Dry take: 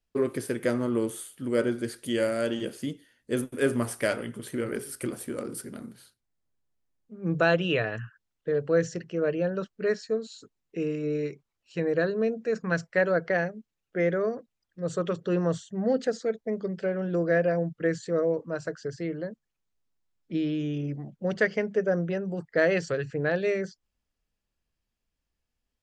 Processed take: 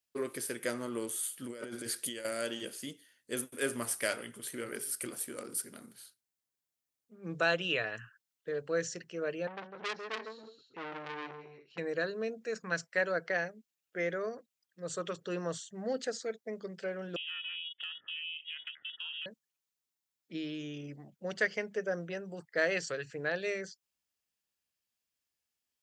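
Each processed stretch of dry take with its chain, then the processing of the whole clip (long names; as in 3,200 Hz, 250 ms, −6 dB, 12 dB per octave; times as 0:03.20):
0:01.23–0:02.25: high-pass filter 61 Hz + compressor whose output falls as the input rises −32 dBFS
0:09.47–0:11.78: high-frequency loss of the air 290 metres + multi-tap delay 151/276/284/349 ms −6.5/−12/−10.5/−17.5 dB + saturating transformer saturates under 2,100 Hz
0:17.16–0:19.26: voice inversion scrambler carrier 3,300 Hz + downward compressor 8 to 1, threshold −33 dBFS + ring modulation 210 Hz
whole clip: high-pass filter 58 Hz; spectral tilt +3 dB per octave; level −6 dB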